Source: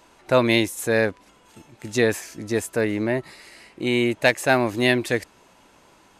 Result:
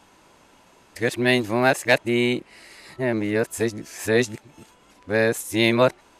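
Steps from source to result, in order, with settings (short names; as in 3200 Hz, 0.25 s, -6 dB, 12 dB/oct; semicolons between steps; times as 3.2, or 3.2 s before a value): whole clip reversed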